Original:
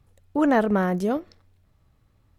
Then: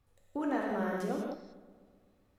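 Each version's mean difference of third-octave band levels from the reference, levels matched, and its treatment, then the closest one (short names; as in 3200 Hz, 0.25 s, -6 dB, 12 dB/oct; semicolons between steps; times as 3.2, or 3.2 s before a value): 7.5 dB: bell 94 Hz -7 dB 2.7 oct; compressor 3:1, threshold -27 dBFS, peak gain reduction 8.5 dB; on a send: darkening echo 0.128 s, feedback 68%, low-pass 2200 Hz, level -16.5 dB; on the sum: non-linear reverb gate 0.22 s flat, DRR -2 dB; gain -8 dB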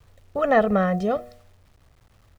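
4.0 dB: LPF 4500 Hz 12 dB/oct; comb 1.6 ms, depth 89%; de-hum 121.6 Hz, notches 6; requantised 10-bit, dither none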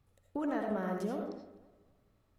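5.5 dB: low shelf 80 Hz -7.5 dB; compressor 5:1, threshold -26 dBFS, peak gain reduction 10 dB; darkening echo 0.255 s, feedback 34%, low-pass 3400 Hz, level -18.5 dB; digital reverb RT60 0.65 s, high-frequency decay 0.35×, pre-delay 40 ms, DRR 2 dB; gain -8 dB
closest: second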